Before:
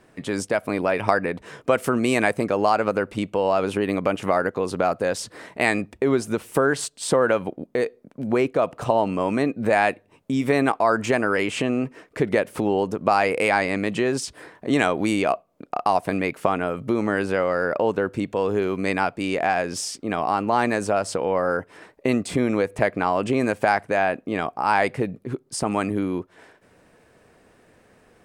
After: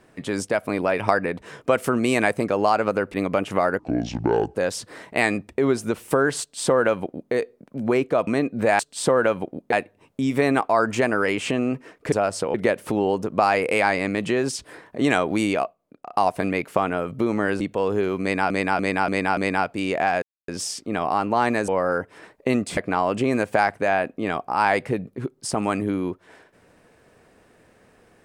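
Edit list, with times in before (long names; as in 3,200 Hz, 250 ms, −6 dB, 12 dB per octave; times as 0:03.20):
0:03.14–0:03.86: remove
0:04.51–0:04.99: play speed 63%
0:06.84–0:07.77: duplicate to 0:09.83
0:08.71–0:09.31: remove
0:15.19–0:15.82: fade out quadratic, to −11.5 dB
0:17.29–0:18.19: remove
0:18.80–0:19.09: repeat, 5 plays
0:19.65: splice in silence 0.26 s
0:20.85–0:21.27: move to 0:12.23
0:22.36–0:22.86: remove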